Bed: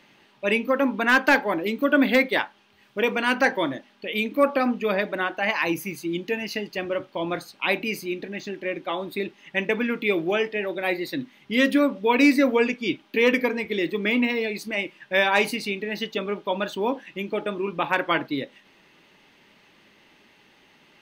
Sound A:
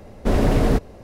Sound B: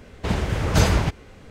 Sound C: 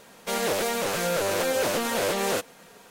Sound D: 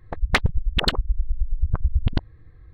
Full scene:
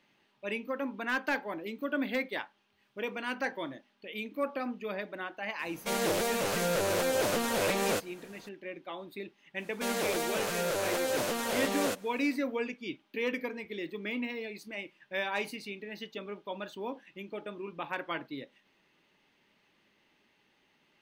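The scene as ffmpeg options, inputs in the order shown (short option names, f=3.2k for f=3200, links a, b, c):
-filter_complex "[3:a]asplit=2[a][b];[0:a]volume=-13dB[c];[a]lowshelf=f=230:g=5,atrim=end=2.9,asetpts=PTS-STARTPTS,volume=-4.5dB,afade=t=in:d=0.004:c=hsin,afade=t=out:st=2.896:d=0.004:c=hsin,adelay=5590[d];[b]atrim=end=2.9,asetpts=PTS-STARTPTS,volume=-6dB,afade=t=in:d=0.1,afade=t=out:st=2.8:d=0.1,adelay=420714S[e];[c][d][e]amix=inputs=3:normalize=0"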